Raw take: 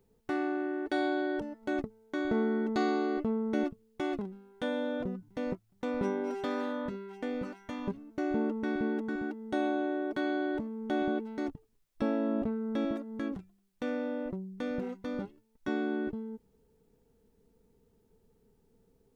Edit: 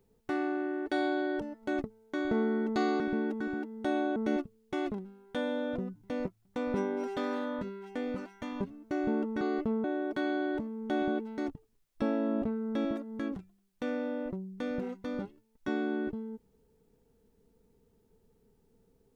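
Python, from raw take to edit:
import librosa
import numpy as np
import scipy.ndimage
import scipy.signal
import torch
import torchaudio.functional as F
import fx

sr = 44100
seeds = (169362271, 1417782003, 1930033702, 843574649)

y = fx.edit(x, sr, fx.swap(start_s=3.0, length_s=0.43, other_s=8.68, other_length_s=1.16), tone=tone)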